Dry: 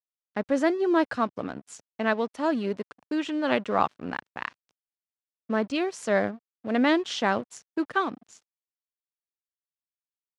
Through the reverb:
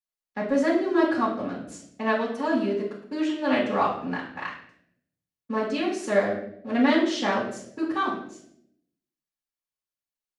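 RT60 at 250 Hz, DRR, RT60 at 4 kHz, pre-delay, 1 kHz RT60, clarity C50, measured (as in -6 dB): 1.0 s, -6.5 dB, 0.55 s, 3 ms, 0.55 s, 5.0 dB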